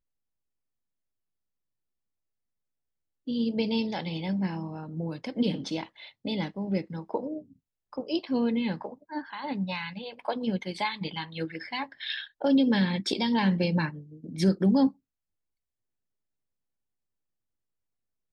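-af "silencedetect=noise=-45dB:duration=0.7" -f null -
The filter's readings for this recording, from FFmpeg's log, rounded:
silence_start: 0.00
silence_end: 3.27 | silence_duration: 3.27
silence_start: 14.91
silence_end: 18.33 | silence_duration: 3.42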